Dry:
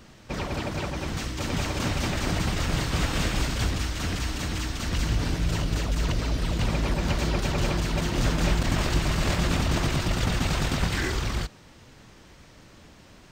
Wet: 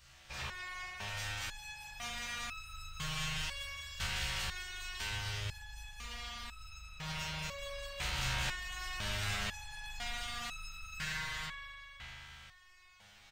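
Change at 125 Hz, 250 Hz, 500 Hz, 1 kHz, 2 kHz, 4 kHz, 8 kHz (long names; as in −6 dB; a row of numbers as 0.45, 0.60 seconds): −18.5, −24.0, −19.5, −12.0, −7.0, −7.5, −9.5 decibels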